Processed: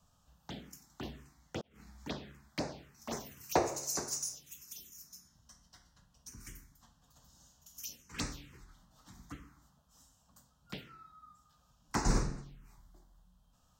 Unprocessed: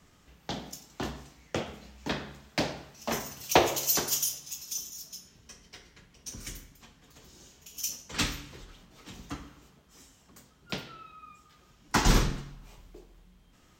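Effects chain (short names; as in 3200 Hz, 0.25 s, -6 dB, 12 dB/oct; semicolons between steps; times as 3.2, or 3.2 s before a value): 1.61–2.06 negative-ratio compressor -50 dBFS, ratio -0.5; envelope phaser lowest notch 340 Hz, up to 3200 Hz, full sweep at -26.5 dBFS; gain -6.5 dB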